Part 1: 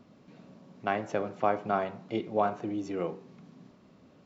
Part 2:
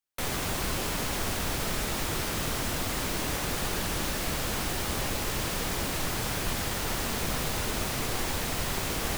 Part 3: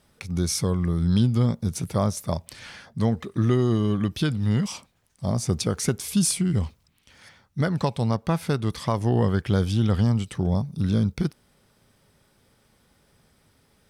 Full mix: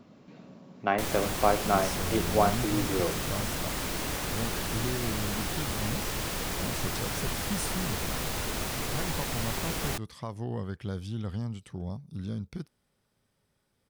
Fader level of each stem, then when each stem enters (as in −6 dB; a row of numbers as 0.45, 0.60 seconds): +3.0, −2.0, −13.0 decibels; 0.00, 0.80, 1.35 seconds